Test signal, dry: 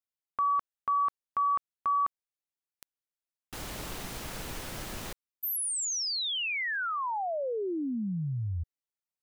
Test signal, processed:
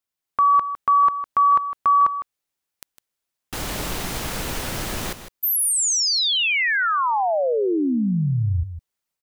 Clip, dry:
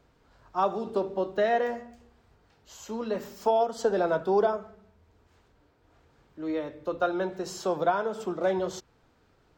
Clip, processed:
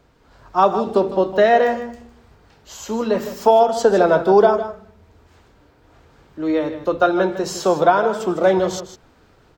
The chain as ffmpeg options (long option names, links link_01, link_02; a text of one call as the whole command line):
ffmpeg -i in.wav -af "dynaudnorm=framelen=190:gausssize=3:maxgain=4dB,aecho=1:1:156:0.266,volume=7dB" out.wav